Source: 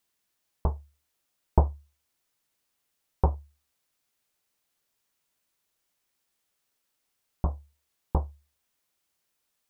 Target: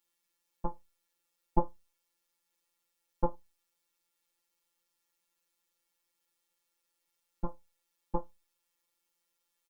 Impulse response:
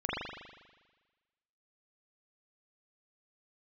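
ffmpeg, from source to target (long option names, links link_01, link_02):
-af "afftfilt=real='hypot(re,im)*cos(PI*b)':imag='0':win_size=1024:overlap=0.75,aecho=1:1:3.6:0.7,volume=-1.5dB"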